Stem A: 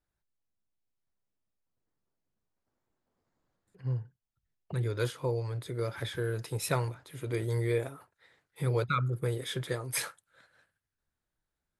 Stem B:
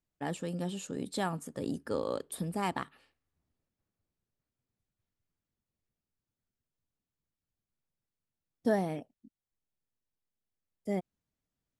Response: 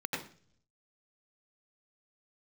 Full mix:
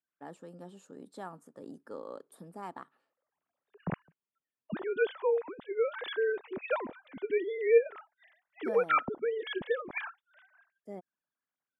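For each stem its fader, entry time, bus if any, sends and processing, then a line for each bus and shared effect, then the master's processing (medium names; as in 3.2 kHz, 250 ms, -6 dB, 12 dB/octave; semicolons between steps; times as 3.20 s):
+1.0 dB, 0.00 s, no send, formants replaced by sine waves
-9.5 dB, 0.00 s, no send, high-pass 230 Hz 12 dB/octave; resonant high shelf 1.8 kHz -7.5 dB, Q 1.5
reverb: none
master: none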